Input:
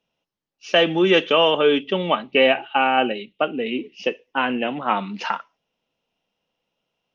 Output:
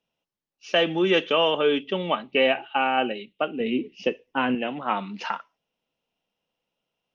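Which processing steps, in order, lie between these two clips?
0:03.60–0:04.55: low-shelf EQ 320 Hz +10 dB
level −4.5 dB

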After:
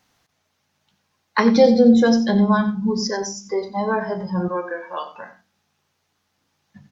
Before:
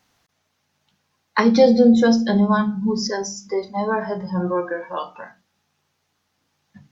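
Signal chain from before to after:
0:04.48–0:05.13: high-pass filter 500 Hz 6 dB per octave
single-tap delay 91 ms −13.5 dB

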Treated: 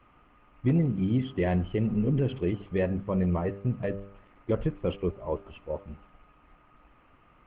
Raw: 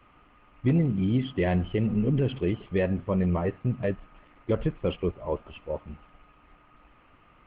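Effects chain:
high-shelf EQ 3,000 Hz −7 dB
hum removal 99.15 Hz, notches 6
level −1 dB

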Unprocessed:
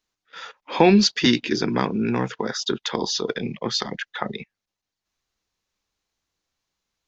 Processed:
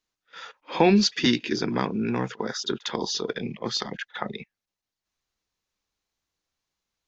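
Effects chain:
echo ahead of the sound 54 ms −23 dB
level −3.5 dB

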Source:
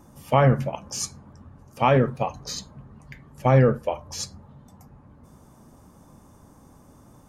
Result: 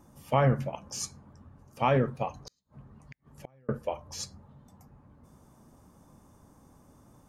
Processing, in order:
0:02.38–0:03.69: gate with flip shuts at −25 dBFS, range −38 dB
level −6 dB

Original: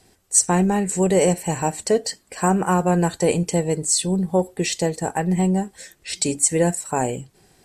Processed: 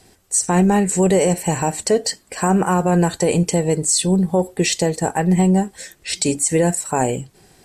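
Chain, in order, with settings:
brickwall limiter −12.5 dBFS, peak gain reduction 9 dB
level +5 dB

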